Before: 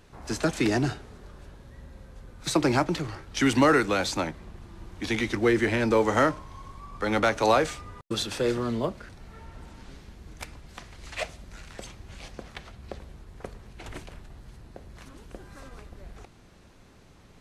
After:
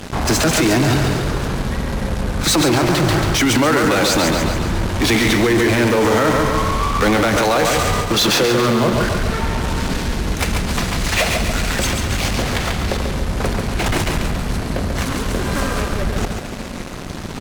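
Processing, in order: band noise 170–260 Hz -58 dBFS; 8.08–8.93 s: elliptic band-pass 120–6400 Hz; in parallel at -10.5 dB: fuzz box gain 47 dB, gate -52 dBFS; on the sum: feedback delay 139 ms, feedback 49%, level -5.5 dB; on a send at -16 dB: reverberation RT60 2.4 s, pre-delay 101 ms; on the sum: loudness maximiser +13.5 dB; trim -7 dB

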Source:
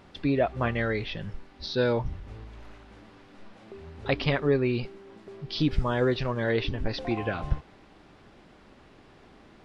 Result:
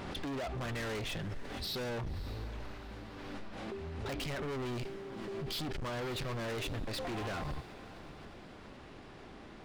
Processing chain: peak limiter -20.5 dBFS, peak gain reduction 9.5 dB; hard clipper -38.5 dBFS, distortion -3 dB; echo that smears into a reverb 584 ms, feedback 40%, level -16 dB; swell ahead of each attack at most 26 dB/s; trim +2 dB

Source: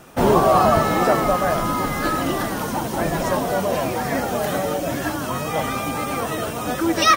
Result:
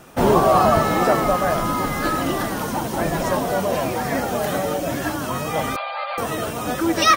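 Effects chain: 5.76–6.18 s: brick-wall FIR band-pass 510–4800 Hz

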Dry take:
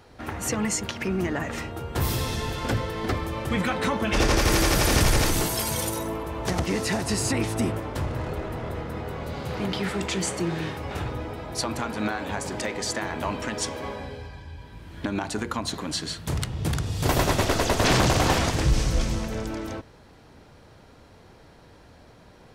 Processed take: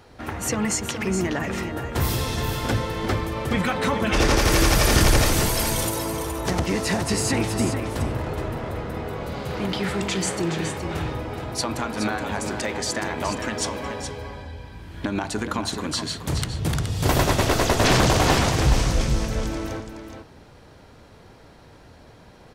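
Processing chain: delay 421 ms -8 dB; trim +2 dB

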